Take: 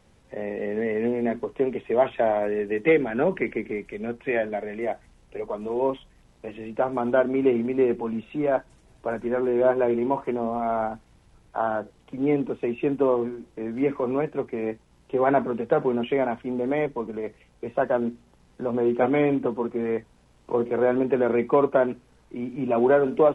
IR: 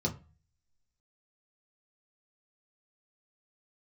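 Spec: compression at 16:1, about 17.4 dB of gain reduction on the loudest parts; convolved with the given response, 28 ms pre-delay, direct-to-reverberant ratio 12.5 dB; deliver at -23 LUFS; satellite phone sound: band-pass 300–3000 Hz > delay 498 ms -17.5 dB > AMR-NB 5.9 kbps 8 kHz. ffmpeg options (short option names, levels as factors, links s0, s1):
-filter_complex "[0:a]acompressor=threshold=0.0251:ratio=16,asplit=2[s0][s1];[1:a]atrim=start_sample=2205,adelay=28[s2];[s1][s2]afir=irnorm=-1:irlink=0,volume=0.133[s3];[s0][s3]amix=inputs=2:normalize=0,highpass=300,lowpass=3000,aecho=1:1:498:0.133,volume=6.68" -ar 8000 -c:a libopencore_amrnb -b:a 5900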